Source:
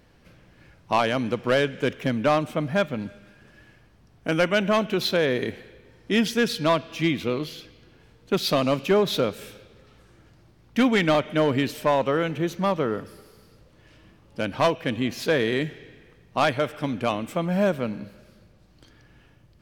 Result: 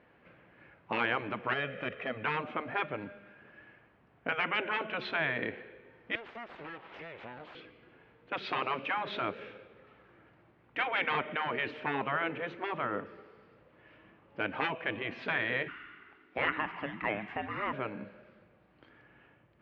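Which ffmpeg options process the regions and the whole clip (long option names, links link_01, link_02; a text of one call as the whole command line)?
ffmpeg -i in.wav -filter_complex "[0:a]asettb=1/sr,asplit=3[link_01][link_02][link_03];[link_01]atrim=end=1.534[link_04];[link_02]atrim=start=1.53:end=2.24,asetpts=PTS-STARTPTS,afade=type=in:duration=0.004:curve=qsin,afade=type=out:start_time=0.706:duration=0.004:curve=qsin,aecho=1:1:1.6:0.64,atrim=end_sample=31311,acompressor=threshold=-25dB:ratio=2:attack=3.2:release=140:knee=1:detection=peak[link_05];[link_03]atrim=start=2.236[link_06];[link_04][link_05]acrossfade=duration=0.004:curve1=hsin:curve2=qsin[link_07];[link_07][link_06]acrossfade=duration=0.004:curve1=qsin:curve2=hsin,asettb=1/sr,asplit=3[link_08][link_09][link_10];[link_08]atrim=end=6.154[link_11];[link_09]atrim=start=6.15:end=7.55,asetpts=PTS-STARTPTS,afade=type=in:duration=0.004:curve=qsin,afade=type=out:start_time=1.396:duration=0.004:curve=qsin,acompressor=threshold=-33dB:ratio=12:attack=3.2:release=140:knee=1:detection=peak,aeval=exprs='abs(val(0))':channel_layout=same[link_12];[link_10]atrim=start=7.546[link_13];[link_11][link_12]acrossfade=duration=0.004:curve1=hsin:curve2=qsin[link_14];[link_14][link_13]acrossfade=duration=0.004:curve1=qsin:curve2=hsin,asettb=1/sr,asplit=3[link_15][link_16][link_17];[link_15]atrim=end=15.684[link_18];[link_16]atrim=start=15.68:end=17.73,asetpts=PTS-STARTPTS,afade=type=in:duration=0.004:curve=qsin,afade=type=out:start_time=2.046:duration=0.004:curve=qsin,acrossover=split=2900[link_19][link_20];[link_20]acompressor=threshold=-49dB:ratio=4:attack=1:release=60[link_21];[link_19][link_21]amix=inputs=2:normalize=0,tiltshelf=frequency=1100:gain=-6.5,afreqshift=-430[link_22];[link_17]atrim=start=17.726[link_23];[link_18][link_22]acrossfade=duration=0.004:curve1=hsin:curve2=qsin[link_24];[link_24][link_23]acrossfade=duration=0.004:curve1=qsin:curve2=hsin,lowpass=frequency=2500:width=0.5412,lowpass=frequency=2500:width=1.3066,afftfilt=real='re*lt(hypot(re,im),0.282)':imag='im*lt(hypot(re,im),0.282)':win_size=1024:overlap=0.75,highpass=frequency=430:poles=1" out.wav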